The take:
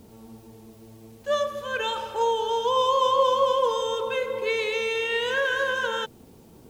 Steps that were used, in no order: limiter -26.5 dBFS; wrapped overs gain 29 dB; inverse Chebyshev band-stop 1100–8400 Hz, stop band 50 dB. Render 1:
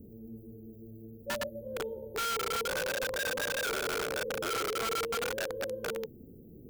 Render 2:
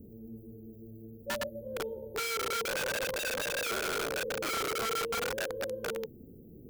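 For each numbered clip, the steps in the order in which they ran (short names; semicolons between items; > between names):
inverse Chebyshev band-stop > limiter > wrapped overs; inverse Chebyshev band-stop > wrapped overs > limiter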